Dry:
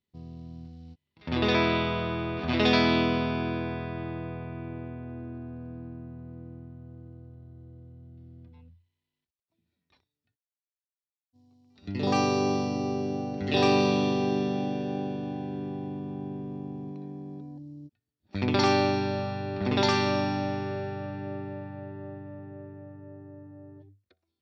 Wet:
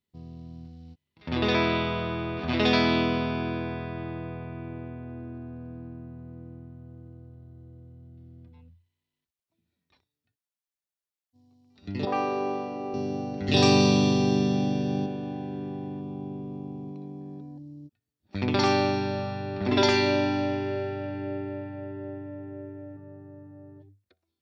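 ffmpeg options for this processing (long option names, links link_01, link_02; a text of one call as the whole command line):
ffmpeg -i in.wav -filter_complex "[0:a]asettb=1/sr,asplit=3[link_01][link_02][link_03];[link_01]atrim=end=12.054[link_04];[link_02]atrim=start=12.05:end=12.94,asetpts=PTS-STARTPTS,afade=type=in:duration=0.004:curve=qsin,afade=type=out:start_time=0.886:duration=0.004:curve=qsin,acrossover=split=310 2700:gain=0.178 1 0.1[link_05][link_06][link_07];[link_05][link_06][link_07]amix=inputs=3:normalize=0[link_08];[link_03]atrim=start=12.936[link_09];[link_04][link_08]acrossfade=duration=0.004:curve1=hsin:curve2=qsin[link_10];[link_10][link_09]acrossfade=duration=0.004:curve1=qsin:curve2=hsin,asettb=1/sr,asplit=3[link_11][link_12][link_13];[link_11]atrim=end=13.484[link_14];[link_12]atrim=start=13.48:end=15.06,asetpts=PTS-STARTPTS,afade=type=in:duration=0.004:curve=qsin,afade=type=out:start_time=1.576:duration=0.004:curve=qsin,bass=frequency=250:gain=8,treble=frequency=4000:gain=12[link_15];[link_13]atrim=start=15.056[link_16];[link_14][link_15]acrossfade=duration=0.004:curve1=hsin:curve2=qsin[link_17];[link_17][link_16]acrossfade=duration=0.004:curve1=qsin:curve2=hsin,asettb=1/sr,asplit=3[link_18][link_19][link_20];[link_18]atrim=end=16.014[link_21];[link_19]atrim=start=16.01:end=17.21,asetpts=PTS-STARTPTS,afade=type=in:duration=0.004:curve=qsin,afade=type=out:start_time=1.196:duration=0.004:curve=qsin,equalizer=frequency=1700:width=5.5:gain=-14.5[link_22];[link_20]atrim=start=17.206[link_23];[link_21][link_22]acrossfade=duration=0.004:curve1=hsin:curve2=qsin[link_24];[link_24][link_23]acrossfade=duration=0.004:curve1=qsin:curve2=hsin,asettb=1/sr,asplit=3[link_25][link_26][link_27];[link_25]atrim=end=19.684[link_28];[link_26]atrim=start=19.68:end=22.97,asetpts=PTS-STARTPTS,afade=type=in:duration=0.004:curve=qsin,afade=type=out:start_time=3.286:duration=0.004:curve=qsin,aecho=1:1:3:0.98,atrim=end_sample=145089[link_29];[link_27]atrim=start=22.966[link_30];[link_28][link_29]acrossfade=duration=0.004:curve1=hsin:curve2=qsin[link_31];[link_31][link_30]acrossfade=duration=0.004:curve1=qsin:curve2=hsin" out.wav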